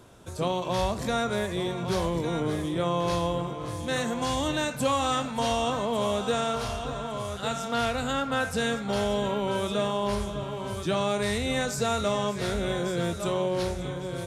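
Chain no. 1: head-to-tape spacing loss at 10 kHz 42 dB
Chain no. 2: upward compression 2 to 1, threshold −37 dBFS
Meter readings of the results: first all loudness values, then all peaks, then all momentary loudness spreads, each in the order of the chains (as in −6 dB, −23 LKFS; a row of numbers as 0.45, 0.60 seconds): −31.0, −28.5 LKFS; −17.5, −15.5 dBFS; 6, 6 LU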